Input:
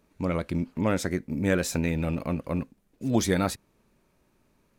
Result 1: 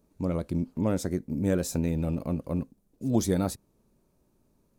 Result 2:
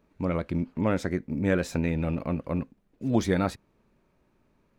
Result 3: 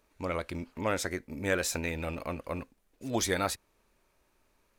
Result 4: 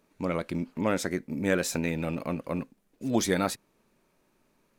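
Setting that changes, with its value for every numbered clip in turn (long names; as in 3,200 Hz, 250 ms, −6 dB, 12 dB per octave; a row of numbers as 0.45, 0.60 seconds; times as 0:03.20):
parametric band, centre frequency: 2,100, 12,000, 170, 61 Hertz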